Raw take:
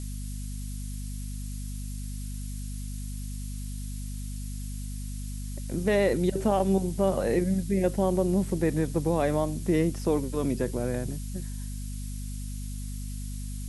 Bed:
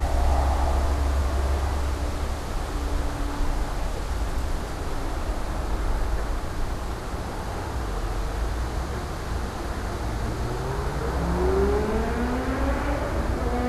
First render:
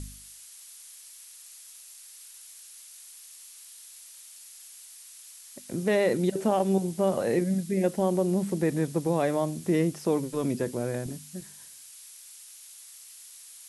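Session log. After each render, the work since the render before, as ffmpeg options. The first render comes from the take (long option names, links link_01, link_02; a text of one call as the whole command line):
ffmpeg -i in.wav -af "bandreject=frequency=50:width_type=h:width=4,bandreject=frequency=100:width_type=h:width=4,bandreject=frequency=150:width_type=h:width=4,bandreject=frequency=200:width_type=h:width=4,bandreject=frequency=250:width_type=h:width=4" out.wav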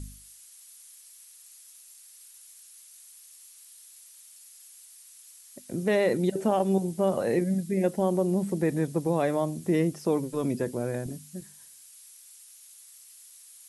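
ffmpeg -i in.wav -af "afftdn=noise_reduction=6:noise_floor=-49" out.wav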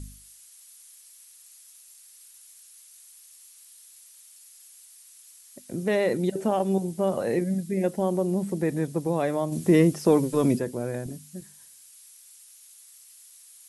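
ffmpeg -i in.wav -filter_complex "[0:a]asplit=3[link_01][link_02][link_03];[link_01]afade=type=out:start_time=9.51:duration=0.02[link_04];[link_02]acontrast=68,afade=type=in:start_time=9.51:duration=0.02,afade=type=out:start_time=10.58:duration=0.02[link_05];[link_03]afade=type=in:start_time=10.58:duration=0.02[link_06];[link_04][link_05][link_06]amix=inputs=3:normalize=0" out.wav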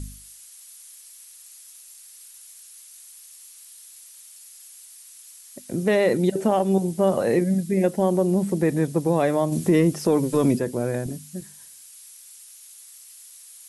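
ffmpeg -i in.wav -af "alimiter=limit=-14.5dB:level=0:latency=1:release=260,acontrast=31" out.wav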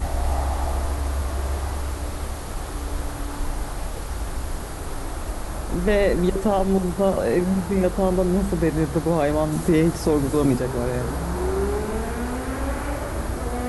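ffmpeg -i in.wav -i bed.wav -filter_complex "[1:a]volume=-1.5dB[link_01];[0:a][link_01]amix=inputs=2:normalize=0" out.wav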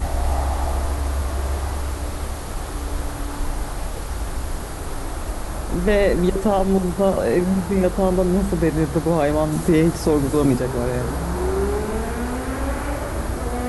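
ffmpeg -i in.wav -af "volume=2dB" out.wav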